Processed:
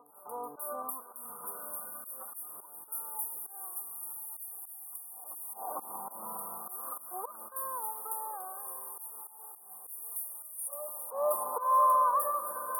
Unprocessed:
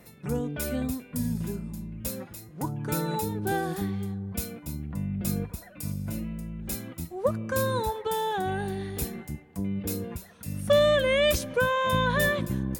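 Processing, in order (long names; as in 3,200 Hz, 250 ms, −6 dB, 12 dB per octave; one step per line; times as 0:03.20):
camcorder AGC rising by 46 dB per second
low-shelf EQ 210 Hz −10.5 dB
mains-hum notches 50/100 Hz
feedback delay with all-pass diffusion 1,163 ms, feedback 45%, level −5.5 dB
auto-filter high-pass saw up 0.18 Hz 840–5,300 Hz
noise gate with hold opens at −38 dBFS
volume swells 176 ms
Chebyshev band-stop filter 1,200–9,400 Hz, order 5
backwards echo 452 ms −17.5 dB
in parallel at −1 dB: downward compressor, threshold −38 dBFS, peak gain reduction 16 dB
on the sum: level −2 dB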